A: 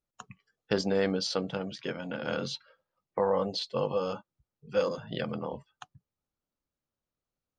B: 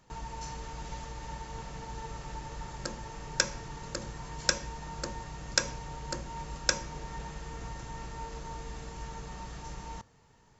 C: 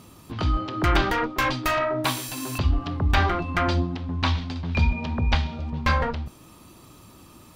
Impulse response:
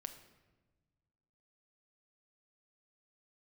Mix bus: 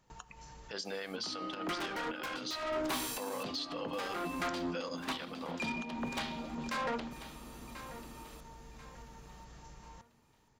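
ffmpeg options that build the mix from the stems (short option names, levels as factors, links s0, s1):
-filter_complex "[0:a]highpass=f=990:p=1,alimiter=level_in=1.26:limit=0.0631:level=0:latency=1:release=60,volume=0.794,adynamicequalizer=threshold=0.00355:dfrequency=1500:dqfactor=0.7:tfrequency=1500:tqfactor=0.7:attack=5:release=100:ratio=0.375:range=2.5:mode=boostabove:tftype=highshelf,volume=1,asplit=3[s0][s1][s2];[s1]volume=0.562[s3];[1:a]acompressor=threshold=0.00794:ratio=3,volume=0.422[s4];[2:a]highpass=f=200:w=0.5412,highpass=f=200:w=1.3066,asoftclip=type=tanh:threshold=0.0447,adelay=850,volume=0.668,asplit=2[s5][s6];[s6]volume=0.188[s7];[s2]apad=whole_len=467420[s8];[s4][s8]sidechaincompress=threshold=0.00158:ratio=4:attack=23:release=148[s9];[3:a]atrim=start_sample=2205[s10];[s3][s10]afir=irnorm=-1:irlink=0[s11];[s7]aecho=0:1:1039|2078|3117|4156|5195:1|0.36|0.13|0.0467|0.0168[s12];[s0][s9][s5][s11][s12]amix=inputs=5:normalize=0,alimiter=level_in=1.78:limit=0.0631:level=0:latency=1:release=206,volume=0.562"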